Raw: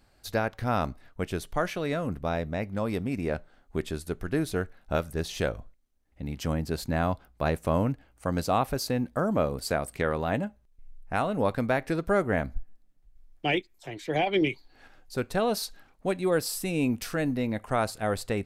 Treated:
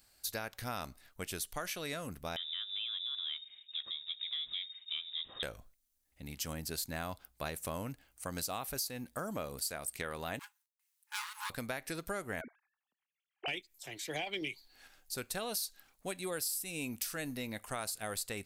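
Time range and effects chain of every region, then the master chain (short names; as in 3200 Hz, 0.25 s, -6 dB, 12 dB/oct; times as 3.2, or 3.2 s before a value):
2.36–5.43 block floating point 5-bit + inverted band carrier 3700 Hz + compressor 1.5:1, threshold -50 dBFS
10.39–11.5 minimum comb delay 4.8 ms + gate with hold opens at -51 dBFS, closes at -57 dBFS + brick-wall FIR high-pass 830 Hz
12.41–13.48 sine-wave speech + compressor 2:1, threshold -32 dBFS
whole clip: pre-emphasis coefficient 0.9; compressor 6:1, threshold -42 dBFS; gain +7.5 dB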